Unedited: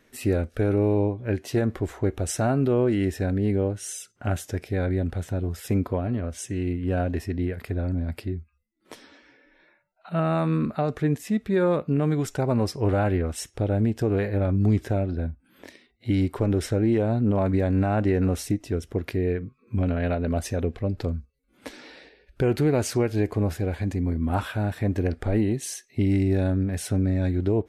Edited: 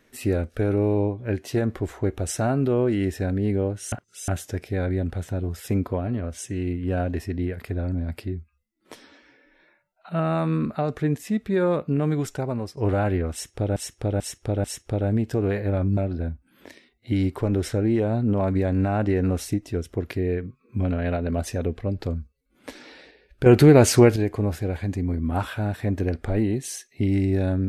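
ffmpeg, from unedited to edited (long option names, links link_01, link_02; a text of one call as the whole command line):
ffmpeg -i in.wav -filter_complex "[0:a]asplit=10[link_01][link_02][link_03][link_04][link_05][link_06][link_07][link_08][link_09][link_10];[link_01]atrim=end=3.922[link_11];[link_02]atrim=start=3.918:end=4.282,asetpts=PTS-STARTPTS,areverse[link_12];[link_03]atrim=start=4.278:end=12.77,asetpts=PTS-STARTPTS,afade=type=out:start_time=7.932:duration=0.56:silence=0.266073[link_13];[link_04]atrim=start=12.77:end=13.762,asetpts=PTS-STARTPTS,afade=type=in:duration=0.004:curve=hsin:silence=0.266073[link_14];[link_05]atrim=start=13.318:end=13.762[link_15];[link_06]atrim=start=13.318:end=13.762[link_16];[link_07]atrim=start=13.318:end=14.652[link_17];[link_08]atrim=start=14.948:end=22.442[link_18];[link_09]atrim=start=22.438:end=23.142,asetpts=PTS-STARTPTS,volume=9dB[link_19];[link_10]atrim=start=23.138[link_20];[link_11][link_12]acrossfade=duration=0.004:curve1=hsin:curve2=hsin[link_21];[link_13][link_14]concat=n=2:v=0:a=1[link_22];[link_21][link_22]acrossfade=duration=0.004:curve1=hsin:curve2=hsin[link_23];[link_23][link_15]acrossfade=duration=0.004:curve1=hsin:curve2=hsin[link_24];[link_24][link_16]acrossfade=duration=0.004:curve1=hsin:curve2=hsin[link_25];[link_25][link_17]acrossfade=duration=0.004:curve1=hsin:curve2=hsin[link_26];[link_26][link_18]acrossfade=duration=0.004:curve1=hsin:curve2=hsin[link_27];[link_27][link_19]acrossfade=duration=0.004:curve1=hsin:curve2=hsin[link_28];[link_28][link_20]acrossfade=duration=0.004:curve1=hsin:curve2=hsin" out.wav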